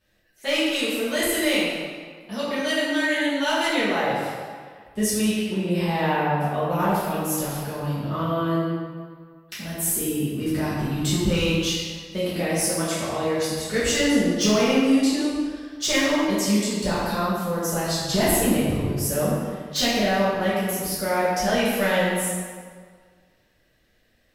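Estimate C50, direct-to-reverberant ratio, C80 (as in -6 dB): -2.0 dB, -11.0 dB, 0.0 dB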